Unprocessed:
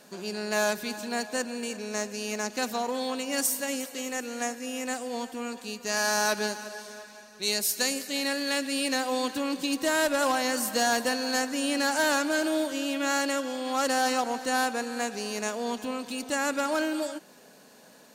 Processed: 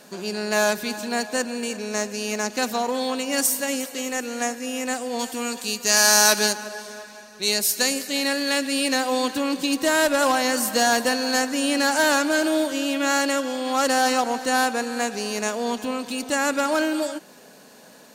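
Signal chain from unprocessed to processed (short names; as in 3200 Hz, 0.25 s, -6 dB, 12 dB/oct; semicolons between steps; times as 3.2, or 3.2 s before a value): 5.19–6.53 high shelf 3200 Hz +10.5 dB; gain +5.5 dB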